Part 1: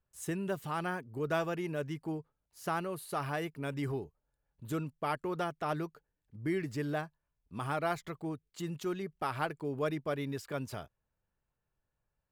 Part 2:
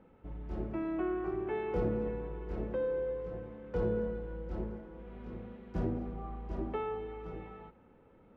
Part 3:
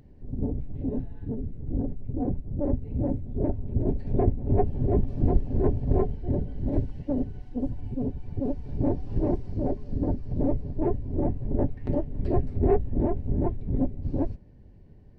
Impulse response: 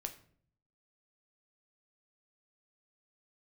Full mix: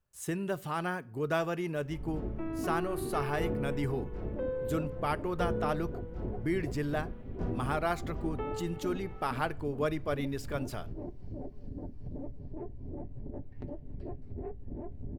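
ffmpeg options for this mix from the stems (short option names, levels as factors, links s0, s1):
-filter_complex "[0:a]volume=0.944,asplit=2[s0][s1];[s1]volume=0.398[s2];[1:a]adelay=1650,volume=0.794[s3];[2:a]acompressor=threshold=0.0316:ratio=6,adelay=1750,volume=0.355,asplit=2[s4][s5];[s5]volume=0.355[s6];[3:a]atrim=start_sample=2205[s7];[s2][s6]amix=inputs=2:normalize=0[s8];[s8][s7]afir=irnorm=-1:irlink=0[s9];[s0][s3][s4][s9]amix=inputs=4:normalize=0"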